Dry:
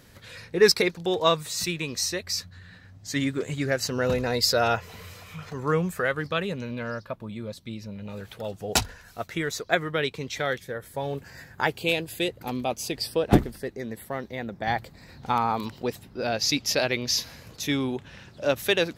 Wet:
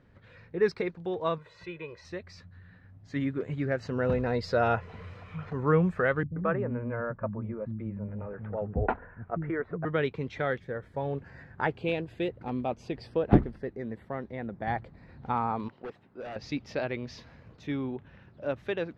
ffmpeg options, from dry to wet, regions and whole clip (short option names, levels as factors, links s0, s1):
-filter_complex "[0:a]asettb=1/sr,asplit=3[s0][s1][s2];[s0]atrim=end=1.384[s3];[s1]atrim=start=1.38:end=2.05,asetpts=PTS-STARTPTS,afade=t=in:d=0.004:c=qsin,afade=t=out:st=0.666:d=0.004:c=qsin,bass=f=250:g=-10,treble=f=4000:g=-13,aecho=1:1:2:0.91,atrim=end_sample=29547[s4];[s2]atrim=start=2.046[s5];[s3][s4]acrossfade=d=0.004:c1=hsin:c2=qsin[s6];[s6][s5]acrossfade=d=0.004:c1=qsin:c2=hsin,asettb=1/sr,asplit=3[s7][s8][s9];[s7]atrim=end=6.234[s10];[s8]atrim=start=6.23:end=9.85,asetpts=PTS-STARTPTS,afade=t=in:d=0.004:c=qsin,afade=t=out:st=3.616:d=0.004:c=qsin,lowpass=f=1800:w=0.5412,lowpass=f=1800:w=1.3066,acrossover=split=240[s11][s12];[s12]adelay=130[s13];[s11][s13]amix=inputs=2:normalize=0,atrim=end_sample=159642[s14];[s9]atrim=start=9.846[s15];[s10][s14]acrossfade=d=0.004:c1=hsin:c2=qsin[s16];[s16][s15]acrossfade=d=0.004:c1=qsin:c2=hsin,asettb=1/sr,asplit=3[s17][s18][s19];[s17]atrim=end=15.684[s20];[s18]atrim=start=15.68:end=16.36,asetpts=PTS-STARTPTS,afade=t=in:d=0.004:c=qsin,afade=t=out:st=0.676:d=0.004:c=qsin,highpass=f=500:p=1,equalizer=f=12000:w=0.33:g=-7.5,aeval=exprs='0.0398*(abs(mod(val(0)/0.0398+3,4)-2)-1)':c=same[s21];[s19]atrim=start=16.356[s22];[s20][s21]acrossfade=d=0.004:c1=hsin:c2=qsin[s23];[s23][s22]acrossfade=d=0.004:c1=qsin:c2=hsin,lowpass=1600,equalizer=f=800:t=o:w=2.4:g=-3,dynaudnorm=f=930:g=9:m=2.99,volume=0.562"